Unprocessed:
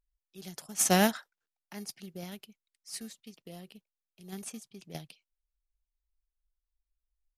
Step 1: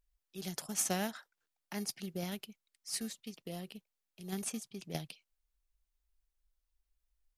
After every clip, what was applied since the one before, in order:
downward compressor 6 to 1, threshold −35 dBFS, peak gain reduction 15.5 dB
level +3.5 dB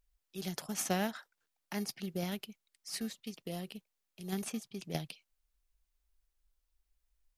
dynamic equaliser 8,600 Hz, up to −8 dB, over −53 dBFS, Q 0.78
level +2.5 dB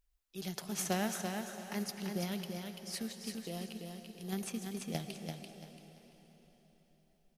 repeating echo 339 ms, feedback 28%, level −5 dB
on a send at −9 dB: convolution reverb RT60 4.7 s, pre-delay 78 ms
on the sum: level −1.5 dB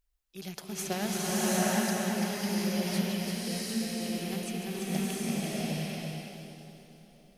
loose part that buzzes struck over −47 dBFS, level −41 dBFS
slow-attack reverb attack 750 ms, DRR −7.5 dB

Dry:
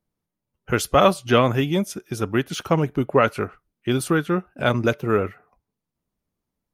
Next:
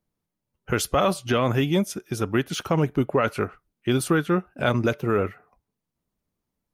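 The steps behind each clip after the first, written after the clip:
brickwall limiter −11 dBFS, peak gain reduction 7.5 dB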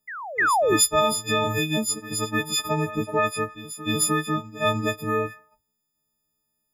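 every partial snapped to a pitch grid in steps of 6 semitones
sound drawn into the spectrogram fall, 0:00.38–0:00.77, 290–2,100 Hz −16 dBFS
backwards echo 306 ms −14.5 dB
level −4 dB

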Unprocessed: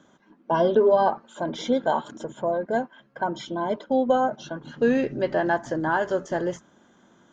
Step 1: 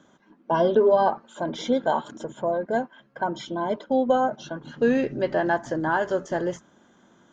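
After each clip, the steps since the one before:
no processing that can be heard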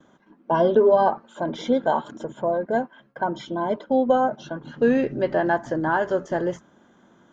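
noise gate with hold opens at −51 dBFS
high-shelf EQ 3,700 Hz −8 dB
level +2 dB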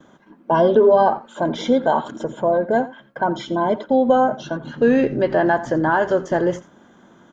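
in parallel at 0 dB: brickwall limiter −17 dBFS, peak gain reduction 10 dB
on the sum: single-tap delay 86 ms −17 dB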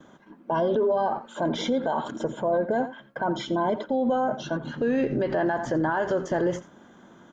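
brickwall limiter −15.5 dBFS, peak gain reduction 10.5 dB
level −1.5 dB

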